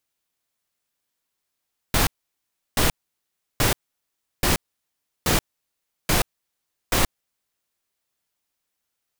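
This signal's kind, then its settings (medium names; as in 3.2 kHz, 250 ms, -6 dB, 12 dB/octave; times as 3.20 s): noise bursts pink, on 0.13 s, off 0.70 s, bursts 7, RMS -19 dBFS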